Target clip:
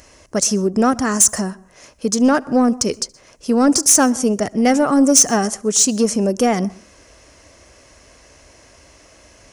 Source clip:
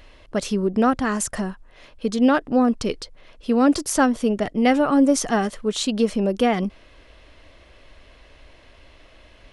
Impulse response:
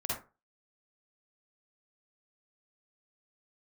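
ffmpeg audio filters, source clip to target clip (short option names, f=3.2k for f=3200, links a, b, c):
-filter_complex "[0:a]highpass=65,highshelf=f=4.7k:t=q:w=3:g=9.5,acontrast=67,asplit=2[a][b];[1:a]atrim=start_sample=2205,adelay=72[c];[b][c]afir=irnorm=-1:irlink=0,volume=-26dB[d];[a][d]amix=inputs=2:normalize=0,volume=-2.5dB"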